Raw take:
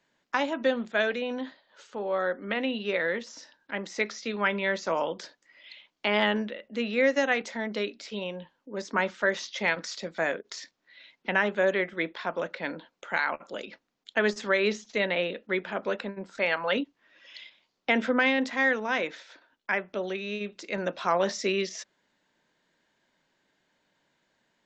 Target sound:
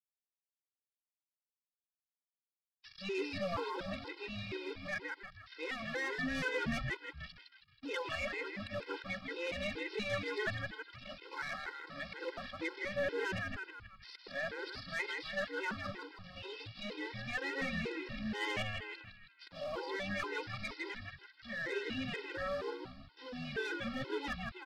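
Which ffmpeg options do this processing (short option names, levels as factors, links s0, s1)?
-filter_complex "[0:a]areverse,highpass=f=65:w=0.5412,highpass=f=65:w=1.3066,equalizer=f=760:w=3.5:g=-6.5,bandreject=f=60:t=h:w=6,bandreject=f=120:t=h:w=6,bandreject=f=180:t=h:w=6,bandreject=f=240:t=h:w=6,bandreject=f=300:t=h:w=6,bandreject=f=360:t=h:w=6,bandreject=f=420:t=h:w=6,bandreject=f=480:t=h:w=6,bandreject=f=540:t=h:w=6,aresample=11025,acrusher=bits=6:mix=0:aa=0.000001,aresample=44100,asplit=8[s0][s1][s2][s3][s4][s5][s6][s7];[s1]adelay=160,afreqshift=-100,volume=0.562[s8];[s2]adelay=320,afreqshift=-200,volume=0.299[s9];[s3]adelay=480,afreqshift=-300,volume=0.158[s10];[s4]adelay=640,afreqshift=-400,volume=0.0841[s11];[s5]adelay=800,afreqshift=-500,volume=0.0442[s12];[s6]adelay=960,afreqshift=-600,volume=0.0234[s13];[s7]adelay=1120,afreqshift=-700,volume=0.0124[s14];[s0][s8][s9][s10][s11][s12][s13][s14]amix=inputs=8:normalize=0,acrossover=split=130|1300[s15][s16][s17];[s16]aeval=exprs='sgn(val(0))*max(abs(val(0))-0.00562,0)':c=same[s18];[s15][s18][s17]amix=inputs=3:normalize=0,aeval=exprs='(tanh(12.6*val(0)+0.15)-tanh(0.15))/12.6':c=same,afftfilt=real='re*gt(sin(2*PI*2.1*pts/sr)*(1-2*mod(floor(b*sr/1024/270),2)),0)':imag='im*gt(sin(2*PI*2.1*pts/sr)*(1-2*mod(floor(b*sr/1024/270),2)),0)':win_size=1024:overlap=0.75,volume=0.562"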